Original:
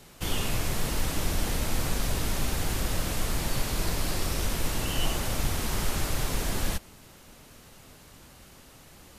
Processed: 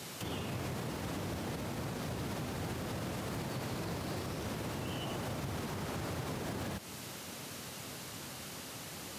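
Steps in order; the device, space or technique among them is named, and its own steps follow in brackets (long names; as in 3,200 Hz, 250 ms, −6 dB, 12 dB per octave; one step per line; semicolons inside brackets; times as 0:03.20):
broadcast voice chain (high-pass filter 95 Hz 24 dB per octave; de-essing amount 95%; downward compressor 3 to 1, threshold −42 dBFS, peak gain reduction 10 dB; parametric band 4,800 Hz +2.5 dB 1.7 octaves; brickwall limiter −36.5 dBFS, peak gain reduction 6.5 dB)
level +6.5 dB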